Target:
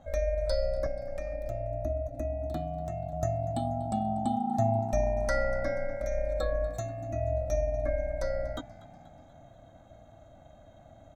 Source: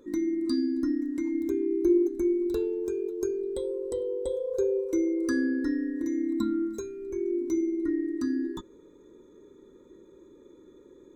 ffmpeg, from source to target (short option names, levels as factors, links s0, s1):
-filter_complex "[0:a]asettb=1/sr,asplit=3[s0][s1][s2];[s0]atrim=end=0.864[s3];[s1]atrim=start=0.86:end=3.13,asetpts=PTS-STARTPTS,afade=t=in:d=0.004:c=qsin,afade=t=out:st=2.266:d=0.004:c=qsin,acrossover=split=170[s4][s5];[s5]acompressor=threshold=0.02:ratio=3[s6];[s4][s6]amix=inputs=2:normalize=0[s7];[s2]atrim=start=3.126[s8];[s3][s7]acrossfade=d=0.004:c1=hsin:c2=qsin[s9];[s9][s8]acrossfade=d=0.004:c1=qsin:c2=hsin,equalizer=f=1400:w=0.33:g=7,asplit=5[s10][s11][s12][s13][s14];[s11]adelay=241,afreqshift=61,volume=0.106[s15];[s12]adelay=482,afreqshift=122,volume=0.0582[s16];[s13]adelay=723,afreqshift=183,volume=0.032[s17];[s14]adelay=964,afreqshift=244,volume=0.0176[s18];[s10][s15][s16][s17][s18]amix=inputs=5:normalize=0,asubboost=boost=3.5:cutoff=55,aeval=exprs='val(0)*sin(2*PI*280*n/s)':c=same"